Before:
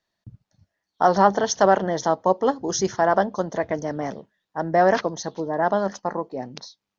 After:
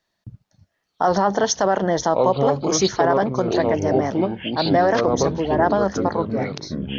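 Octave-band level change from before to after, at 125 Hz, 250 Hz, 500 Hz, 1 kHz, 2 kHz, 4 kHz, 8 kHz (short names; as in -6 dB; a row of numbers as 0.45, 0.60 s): +7.0 dB, +5.5 dB, +3.0 dB, +0.5 dB, +1.0 dB, +7.0 dB, n/a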